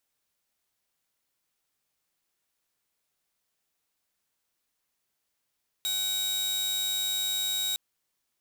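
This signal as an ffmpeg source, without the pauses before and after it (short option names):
-f lavfi -i "aevalsrc='0.0596*(2*mod(3800*t,1)-1)':d=1.91:s=44100"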